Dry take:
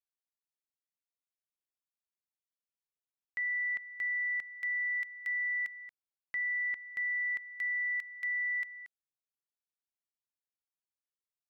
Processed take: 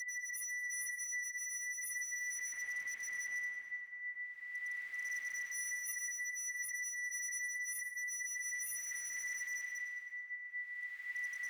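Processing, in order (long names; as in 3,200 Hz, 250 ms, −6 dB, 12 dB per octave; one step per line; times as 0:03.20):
extreme stretch with random phases 10×, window 0.25 s, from 0:04.11
wave folding −37 dBFS
echo with a time of its own for lows and highs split 2,500 Hz, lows 651 ms, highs 105 ms, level −11.5 dB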